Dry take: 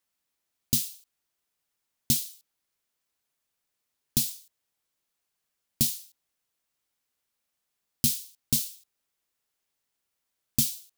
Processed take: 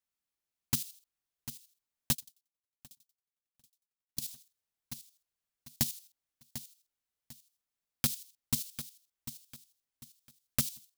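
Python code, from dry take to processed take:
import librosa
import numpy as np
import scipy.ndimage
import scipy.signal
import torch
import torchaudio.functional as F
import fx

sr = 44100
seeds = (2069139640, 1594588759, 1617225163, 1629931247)

y = (np.mod(10.0 ** (11.0 / 20.0) * x + 1.0, 2.0) - 1.0) / 10.0 ** (11.0 / 20.0)
y = fx.level_steps(y, sr, step_db=11)
y = fx.low_shelf(y, sr, hz=98.0, db=7.5)
y = fx.echo_feedback(y, sr, ms=747, feedback_pct=32, wet_db=-12)
y = fx.tremolo_decay(y, sr, direction='decaying', hz=11.0, depth_db=36, at=(2.13, 4.21), fade=0.02)
y = F.gain(torch.from_numpy(y), -4.0).numpy()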